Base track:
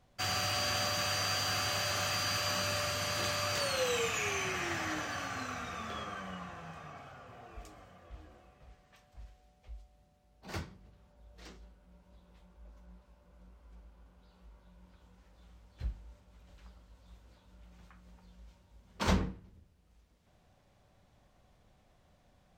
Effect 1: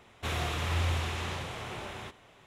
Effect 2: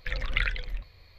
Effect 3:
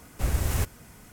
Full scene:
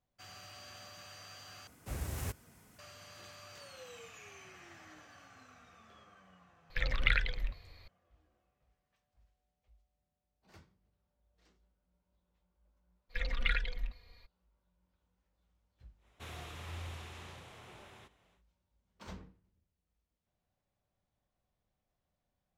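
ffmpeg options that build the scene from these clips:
-filter_complex "[2:a]asplit=2[a][b];[0:a]volume=-19dB[c];[3:a]highpass=62[d];[b]aecho=1:1:4.2:0.87[e];[1:a]highshelf=f=9.7k:g=5[f];[c]asplit=2[g][h];[g]atrim=end=1.674[i];[d]atrim=end=1.12,asetpts=PTS-STARTPTS,volume=-11dB[j];[h]atrim=start=2.786[k];[a]atrim=end=1.18,asetpts=PTS-STARTPTS,volume=-1.5dB,afade=t=in:d=0.004:c=hsin,afade=t=out:st=1.176:d=0.004:c=hsin,adelay=6700[l];[e]atrim=end=1.18,asetpts=PTS-STARTPTS,volume=-7.5dB,afade=t=in:d=0.02,afade=t=out:st=1.16:d=0.02,adelay=13090[m];[f]atrim=end=2.46,asetpts=PTS-STARTPTS,volume=-14.5dB,afade=t=in:d=0.1,afade=t=out:st=2.36:d=0.1,adelay=15970[n];[i][j]acrossfade=d=0.004:c1=hsin:c2=hsin[o];[o][k]acrossfade=d=0.004:c1=hsin:c2=hsin[p];[p][l][m][n]amix=inputs=4:normalize=0"

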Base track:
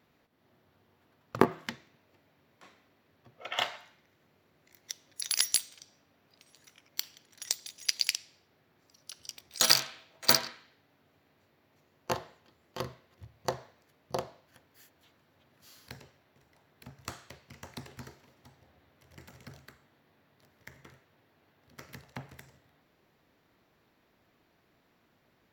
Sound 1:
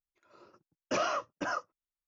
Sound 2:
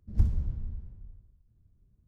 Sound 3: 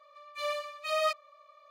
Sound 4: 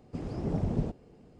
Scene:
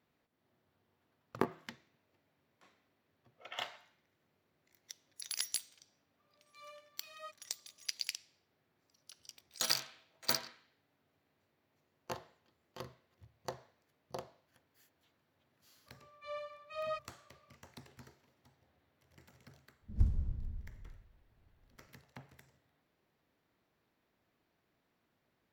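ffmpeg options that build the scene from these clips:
-filter_complex "[3:a]asplit=2[a][b];[0:a]volume=-10dB[c];[a]asplit=2[d][e];[e]adelay=7.2,afreqshift=2.3[f];[d][f]amix=inputs=2:normalize=1[g];[b]aemphasis=mode=reproduction:type=riaa[h];[g]atrim=end=1.7,asetpts=PTS-STARTPTS,volume=-18dB,afade=t=in:d=0.004:c=hsin,afade=t=out:st=1.696:d=0.004:c=hsin,adelay=272538S[i];[h]atrim=end=1.7,asetpts=PTS-STARTPTS,volume=-10.5dB,afade=t=in:d=0.004:c=hsin,afade=t=out:st=1.696:d=0.004:c=hsin,adelay=15860[j];[2:a]atrim=end=2.07,asetpts=PTS-STARTPTS,volume=-5.5dB,afade=t=in:d=0.004:c=hsin,afade=t=out:st=2.066:d=0.004:c=hsin,adelay=19810[k];[c][i][j][k]amix=inputs=4:normalize=0"

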